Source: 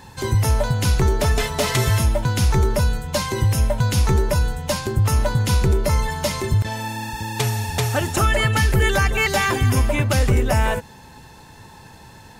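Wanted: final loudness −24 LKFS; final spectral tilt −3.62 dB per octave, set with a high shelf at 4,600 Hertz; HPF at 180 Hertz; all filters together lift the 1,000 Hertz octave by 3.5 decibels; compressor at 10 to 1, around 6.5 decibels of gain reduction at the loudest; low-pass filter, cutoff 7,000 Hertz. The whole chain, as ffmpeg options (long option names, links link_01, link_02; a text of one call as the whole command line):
ffmpeg -i in.wav -af "highpass=180,lowpass=7000,equalizer=frequency=1000:width_type=o:gain=4,highshelf=frequency=4600:gain=6,acompressor=threshold=-21dB:ratio=10,volume=2dB" out.wav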